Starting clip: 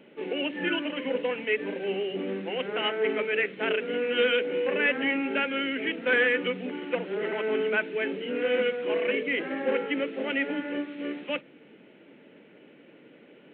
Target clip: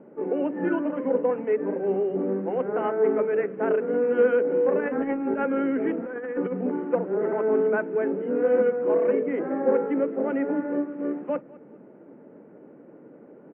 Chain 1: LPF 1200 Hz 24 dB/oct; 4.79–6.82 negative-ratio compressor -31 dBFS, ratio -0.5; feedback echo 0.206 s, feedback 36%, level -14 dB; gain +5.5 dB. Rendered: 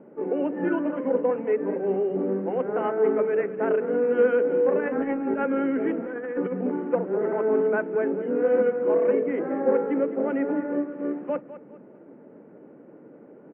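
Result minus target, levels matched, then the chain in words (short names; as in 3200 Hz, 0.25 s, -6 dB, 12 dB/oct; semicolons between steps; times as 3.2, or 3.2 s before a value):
echo-to-direct +8 dB
LPF 1200 Hz 24 dB/oct; 4.79–6.82 negative-ratio compressor -31 dBFS, ratio -0.5; feedback echo 0.206 s, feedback 36%, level -22 dB; gain +5.5 dB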